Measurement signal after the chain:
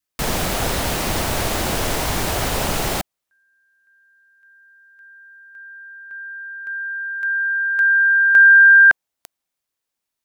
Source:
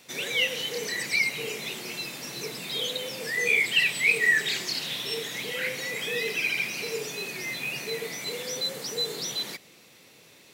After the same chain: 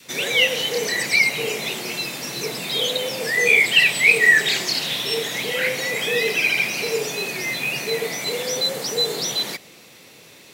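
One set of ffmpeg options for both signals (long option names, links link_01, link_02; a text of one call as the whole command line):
ffmpeg -i in.wav -af "adynamicequalizer=threshold=0.00631:dfrequency=690:dqfactor=1.6:tfrequency=690:tqfactor=1.6:attack=5:release=100:ratio=0.375:range=2.5:mode=boostabove:tftype=bell,volume=7.5dB" out.wav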